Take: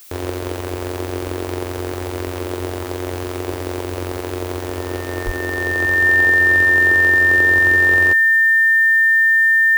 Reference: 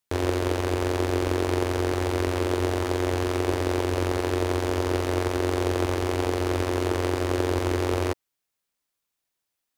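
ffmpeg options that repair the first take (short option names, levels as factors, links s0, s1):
-filter_complex "[0:a]bandreject=f=1800:w=30,asplit=3[s0][s1][s2];[s0]afade=t=out:st=5.25:d=0.02[s3];[s1]highpass=f=140:w=0.5412,highpass=f=140:w=1.3066,afade=t=in:st=5.25:d=0.02,afade=t=out:st=5.37:d=0.02[s4];[s2]afade=t=in:st=5.37:d=0.02[s5];[s3][s4][s5]amix=inputs=3:normalize=0,agate=range=0.0891:threshold=0.112"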